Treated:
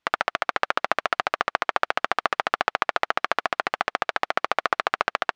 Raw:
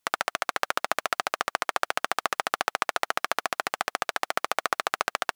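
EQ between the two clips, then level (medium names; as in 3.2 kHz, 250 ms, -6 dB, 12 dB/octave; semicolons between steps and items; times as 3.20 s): low-pass 3.4 kHz 12 dB/octave; +4.0 dB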